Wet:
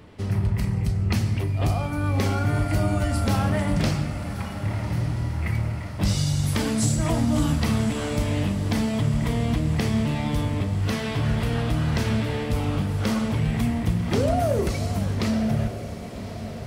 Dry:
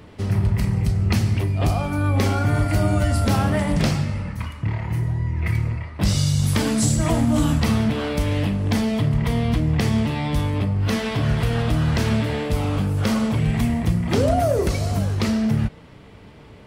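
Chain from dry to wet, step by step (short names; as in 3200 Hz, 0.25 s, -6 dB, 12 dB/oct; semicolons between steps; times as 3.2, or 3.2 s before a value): diffused feedback echo 1.167 s, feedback 61%, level -11 dB; gain -3.5 dB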